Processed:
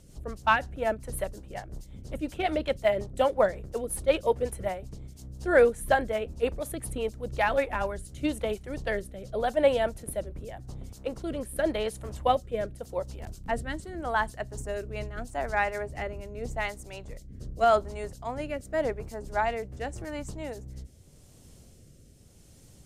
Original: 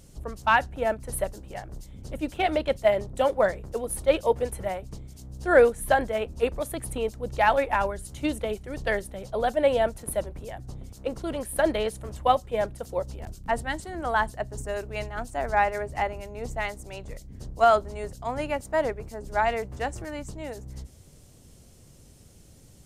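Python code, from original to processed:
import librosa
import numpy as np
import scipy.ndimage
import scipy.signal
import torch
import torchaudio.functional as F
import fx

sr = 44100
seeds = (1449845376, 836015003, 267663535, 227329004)

y = fx.rotary_switch(x, sr, hz=5.5, then_hz=0.85, switch_at_s=7.35)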